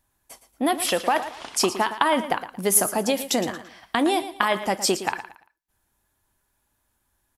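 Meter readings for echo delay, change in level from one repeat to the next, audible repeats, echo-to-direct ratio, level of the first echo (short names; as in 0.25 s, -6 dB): 0.114 s, -11.0 dB, 3, -12.0 dB, -12.5 dB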